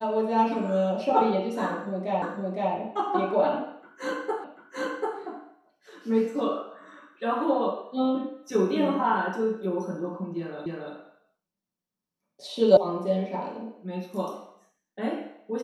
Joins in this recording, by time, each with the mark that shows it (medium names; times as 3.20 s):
2.22 s: repeat of the last 0.51 s
4.44 s: repeat of the last 0.74 s
10.66 s: repeat of the last 0.28 s
12.77 s: sound stops dead